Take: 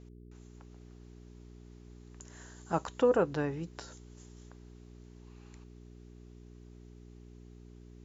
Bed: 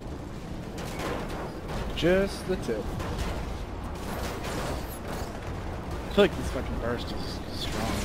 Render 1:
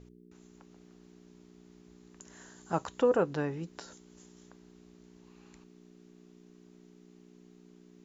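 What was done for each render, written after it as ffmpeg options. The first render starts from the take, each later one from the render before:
-af "bandreject=f=60:t=h:w=4,bandreject=f=120:t=h:w=4"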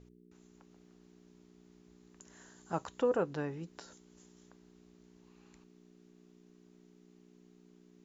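-af "volume=-4.5dB"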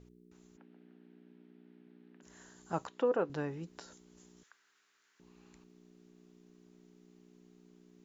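-filter_complex "[0:a]asplit=3[a][b][c];[a]afade=t=out:st=0.56:d=0.02[d];[b]highpass=f=160:w=0.5412,highpass=f=160:w=1.3066,equalizer=f=260:t=q:w=4:g=6,equalizer=f=1.1k:t=q:w=4:g=-8,equalizer=f=1.6k:t=q:w=4:g=4,lowpass=f=3.2k:w=0.5412,lowpass=f=3.2k:w=1.3066,afade=t=in:st=0.56:d=0.02,afade=t=out:st=2.22:d=0.02[e];[c]afade=t=in:st=2.22:d=0.02[f];[d][e][f]amix=inputs=3:normalize=0,asettb=1/sr,asplit=3[g][h][i];[g]atrim=end=2.874[j];[h]atrim=start=2.87:end=3.3,asetpts=PTS-STARTPTS,afade=t=in:d=0.004:c=qsin,afade=t=out:st=0.426:d=0.004:c=qsin,highpass=210,lowpass=4.3k[k];[i]atrim=start=3.296[l];[j][k]acrossfade=d=0.004:c1=hsin:c2=qsin[m];[m][l]acrossfade=d=0.004:c1=qsin:c2=hsin,asettb=1/sr,asplit=3[n][o][p];[n]atrim=end=4.434[q];[o]atrim=start=4.43:end=5.2,asetpts=PTS-STARTPTS,afade=t=in:d=0.004:c=qsin,afade=t=out:st=0.766:d=0.004:c=qsin,highpass=f=1.5k:t=q:w=2.6[r];[p]atrim=start=5.196[s];[q][r]acrossfade=d=0.004:c1=hsin:c2=qsin[t];[t][s]acrossfade=d=0.004:c1=qsin:c2=hsin"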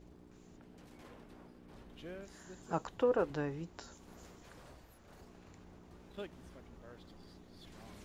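-filter_complex "[1:a]volume=-24.5dB[a];[0:a][a]amix=inputs=2:normalize=0"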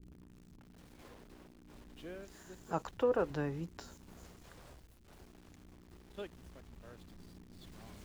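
-filter_complex "[0:a]acrossover=split=330[a][b];[a]aphaser=in_gain=1:out_gain=1:delay=3.5:decay=0.31:speed=0.27:type=triangular[c];[b]aeval=exprs='val(0)*gte(abs(val(0)),0.00112)':c=same[d];[c][d]amix=inputs=2:normalize=0"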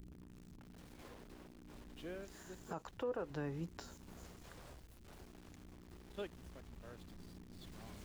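-af "alimiter=level_in=7.5dB:limit=-24dB:level=0:latency=1:release=331,volume=-7.5dB,acompressor=mode=upward:threshold=-52dB:ratio=2.5"

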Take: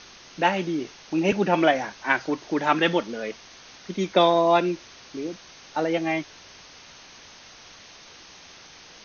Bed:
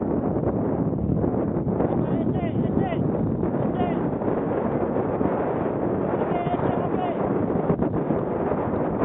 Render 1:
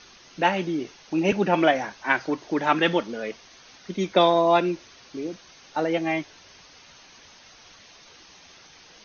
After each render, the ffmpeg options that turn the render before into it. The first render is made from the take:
-af "afftdn=nr=6:nf=-48"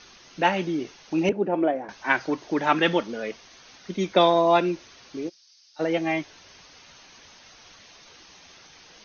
-filter_complex "[0:a]asettb=1/sr,asplit=3[a][b][c];[a]atrim=end=1.294[d];[b]atrim=start=1.29:end=1.89,asetpts=PTS-STARTPTS,afade=t=in:d=0.004:c=qsin,afade=t=out:st=0.596:d=0.004:c=qsin,bandpass=f=390:t=q:w=1.2[e];[c]atrim=start=1.886[f];[d][e]acrossfade=d=0.004:c1=hsin:c2=qsin[g];[g][f]acrossfade=d=0.004:c1=qsin:c2=hsin,asplit=3[h][i][j];[h]afade=t=out:st=5.28:d=0.02[k];[i]bandpass=f=5k:t=q:w=4.2,afade=t=in:st=5.28:d=0.02,afade=t=out:st=5.79:d=0.02[l];[j]afade=t=in:st=5.79:d=0.02[m];[k][l][m]amix=inputs=3:normalize=0"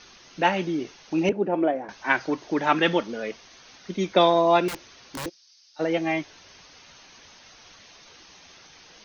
-filter_complex "[0:a]asettb=1/sr,asplit=3[a][b][c];[a]atrim=end=4.684[d];[b]atrim=start=4.68:end=5.26,asetpts=PTS-STARTPTS,afade=t=in:d=0.004:c=qsin,afade=t=out:st=0.576:d=0.004:c=qsin,aeval=exprs='(mod(25.1*val(0)+1,2)-1)/25.1':c=same[e];[c]atrim=start=5.256[f];[d][e]acrossfade=d=0.004:c1=hsin:c2=qsin[g];[g][f]acrossfade=d=0.004:c1=qsin:c2=hsin"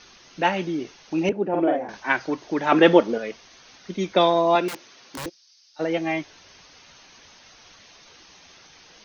-filter_complex "[0:a]asettb=1/sr,asplit=3[a][b][c];[a]atrim=end=1.494[d];[b]atrim=start=1.49:end=2,asetpts=PTS-STARTPTS,afade=t=in:d=0.004:c=qsin,afade=t=out:st=0.506:d=0.004:c=qsin,asplit=2[e][f];[f]adelay=48,volume=-2dB[g];[e][g]amix=inputs=2:normalize=0,atrim=end_sample=22491[h];[c]atrim=start=1.996[i];[d][h]acrossfade=d=0.004:c1=hsin:c2=qsin[j];[j][i]acrossfade=d=0.004:c1=qsin:c2=hsin,asettb=1/sr,asplit=3[k][l][m];[k]atrim=end=2.724[n];[l]atrim=start=2.72:end=3.18,asetpts=PTS-STARTPTS,afade=t=in:d=0.004:c=qsin,afade=t=out:st=0.456:d=0.004:c=qsin,equalizer=f=480:t=o:w=2.5:g=10[o];[m]atrim=start=3.176[p];[n][o]acrossfade=d=0.004:c1=hsin:c2=qsin[q];[q][p]acrossfade=d=0.004:c1=qsin:c2=hsin,asettb=1/sr,asplit=3[r][s][t];[r]atrim=end=4.554[u];[s]atrim=start=4.55:end=5.18,asetpts=PTS-STARTPTS,afade=t=in:d=0.004:c=qsin,afade=t=out:st=0.626:d=0.004:c=qsin,highpass=180[v];[t]atrim=start=5.176[w];[u][v]acrossfade=d=0.004:c1=hsin:c2=qsin[x];[x][w]acrossfade=d=0.004:c1=qsin:c2=hsin"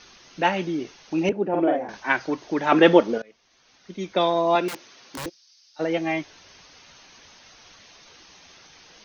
-filter_complex "[0:a]asplit=2[a][b];[a]atrim=end=3.22,asetpts=PTS-STARTPTS,afade=t=out:st=3.216:d=0.004:c=hsin:silence=0.0668344[c];[b]atrim=start=3.22,asetpts=PTS-STARTPTS,afade=t=in:d=1.52:silence=0.0668344[d];[c][d]concat=n=2:v=0:a=1"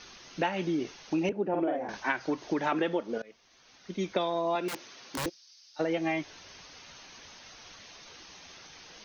-af "acompressor=threshold=-25dB:ratio=16"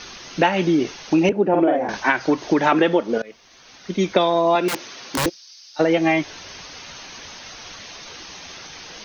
-af "volume=12dB,alimiter=limit=-2dB:level=0:latency=1"

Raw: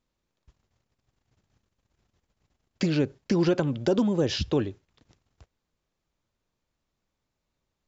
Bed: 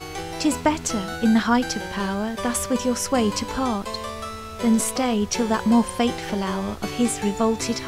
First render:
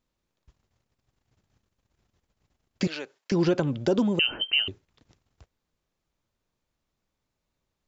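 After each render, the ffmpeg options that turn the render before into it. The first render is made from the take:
-filter_complex "[0:a]asettb=1/sr,asplit=3[a][b][c];[a]atrim=end=2.874[d];[b]atrim=start=2.87:end=3.32,asetpts=PTS-STARTPTS,afade=t=in:d=0.004:c=qsin,afade=t=out:st=0.446:d=0.004:c=qsin,highpass=800[e];[c]atrim=start=3.316[f];[d][e]acrossfade=d=0.004:c1=hsin:c2=qsin[g];[g][f]acrossfade=d=0.004:c1=qsin:c2=hsin,asettb=1/sr,asplit=3[h][i][j];[h]atrim=end=4.194[k];[i]atrim=start=4.19:end=4.68,asetpts=PTS-STARTPTS,afade=t=in:d=0.004:c=qsin,afade=t=out:st=0.486:d=0.004:c=qsin,lowpass=f=2.7k:t=q:w=0.5098,lowpass=f=2.7k:t=q:w=0.6013,lowpass=f=2.7k:t=q:w=0.9,lowpass=f=2.7k:t=q:w=2.563,afreqshift=-3200[l];[j]atrim=start=4.676[m];[k][l]acrossfade=d=0.004:c1=hsin:c2=qsin[n];[n][m]acrossfade=d=0.004:c1=qsin:c2=hsin"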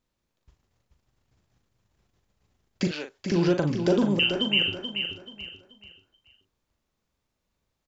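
-filter_complex "[0:a]asplit=2[a][b];[b]adelay=40,volume=-7dB[c];[a][c]amix=inputs=2:normalize=0,aecho=1:1:432|864|1296|1728:0.447|0.143|0.0457|0.0146"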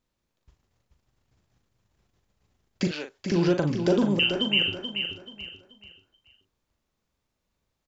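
-af anull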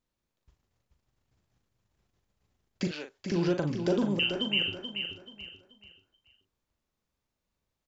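-af "volume=-5dB"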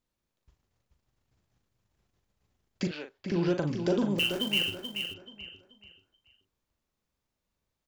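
-filter_complex "[0:a]asettb=1/sr,asplit=3[a][b][c];[a]atrim=end=2.874[d];[b]atrim=start=2.87:end=3.48,asetpts=PTS-STARTPTS,afade=t=in:d=0.004:c=qsin,afade=t=out:st=0.606:d=0.004:c=qsin,equalizer=f=6.7k:w=1.4:g=-9.5[e];[c]atrim=start=3.476[f];[d][e]acrossfade=d=0.004:c1=hsin:c2=qsin[g];[g][f]acrossfade=d=0.004:c1=qsin:c2=hsin,asettb=1/sr,asplit=3[h][i][j];[h]atrim=end=4.184[k];[i]atrim=start=4.18:end=5.14,asetpts=PTS-STARTPTS,afade=t=in:d=0.004:c=qsin,afade=t=out:st=0.956:d=0.004:c=qsin,acrusher=bits=3:mode=log:mix=0:aa=0.000001[l];[j]atrim=start=5.136[m];[k][l]acrossfade=d=0.004:c1=hsin:c2=qsin[n];[n][m]acrossfade=d=0.004:c1=qsin:c2=hsin"

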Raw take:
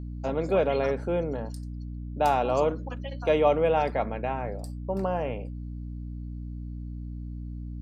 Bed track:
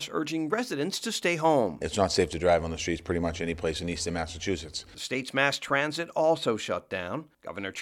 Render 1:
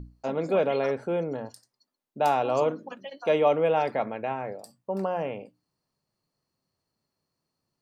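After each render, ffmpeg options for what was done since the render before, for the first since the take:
-af "bandreject=f=60:t=h:w=6,bandreject=f=120:t=h:w=6,bandreject=f=180:t=h:w=6,bandreject=f=240:t=h:w=6,bandreject=f=300:t=h:w=6"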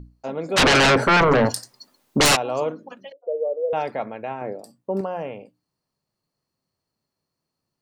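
-filter_complex "[0:a]asplit=3[a][b][c];[a]afade=t=out:st=0.56:d=0.02[d];[b]aeval=exprs='0.251*sin(PI/2*8.91*val(0)/0.251)':c=same,afade=t=in:st=0.56:d=0.02,afade=t=out:st=2.35:d=0.02[e];[c]afade=t=in:st=2.35:d=0.02[f];[d][e][f]amix=inputs=3:normalize=0,asettb=1/sr,asplit=3[g][h][i];[g]atrim=end=3.124[j];[h]atrim=start=3.12:end=3.73,asetpts=PTS-STARTPTS,afade=t=in:d=0.004:c=qsin,afade=t=out:st=0.606:d=0.004:c=qsin,asuperpass=centerf=510:order=4:qfactor=3.5[k];[i]atrim=start=3.726[l];[j][k]acrossfade=d=0.004:c1=hsin:c2=qsin[m];[m][l]acrossfade=d=0.004:c1=qsin:c2=hsin,asettb=1/sr,asplit=3[n][o][p];[n]atrim=end=4.414[q];[o]atrim=start=4.41:end=5.01,asetpts=PTS-STARTPTS,afade=t=in:d=0.004:c=qsin,afade=t=out:st=0.596:d=0.004:c=qsin,equalizer=f=310:t=o:w=1.5:g=9.5[r];[p]atrim=start=5.006[s];[q][r]acrossfade=d=0.004:c1=hsin:c2=qsin[t];[t][s]acrossfade=d=0.004:c1=qsin:c2=hsin"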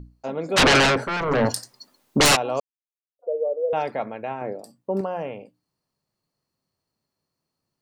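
-filter_complex "[0:a]asplit=5[a][b][c][d][e];[a]atrim=end=1.06,asetpts=PTS-STARTPTS,afade=t=out:st=0.77:d=0.29:silence=0.298538[f];[b]atrim=start=1.06:end=1.22,asetpts=PTS-STARTPTS,volume=-10.5dB[g];[c]atrim=start=1.22:end=2.6,asetpts=PTS-STARTPTS,afade=t=in:d=0.29:silence=0.298538,afade=t=out:st=1.376:d=0.004:c=hsin[h];[d]atrim=start=2.6:end=3.19,asetpts=PTS-STARTPTS,volume=0[i];[e]atrim=start=3.19,asetpts=PTS-STARTPTS,afade=t=in:d=0.004:c=hsin[j];[f][g][h][i][j]concat=n=5:v=0:a=1"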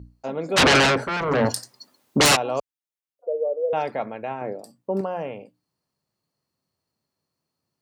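-af "highpass=46"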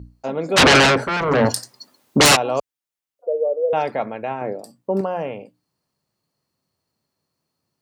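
-af "volume=4dB"

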